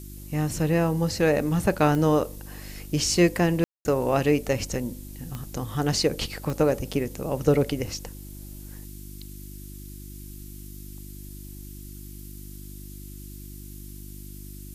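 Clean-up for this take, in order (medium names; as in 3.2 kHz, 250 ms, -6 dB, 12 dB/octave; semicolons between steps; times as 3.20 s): de-click; de-hum 49.7 Hz, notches 7; room tone fill 3.64–3.85 s; noise print and reduce 29 dB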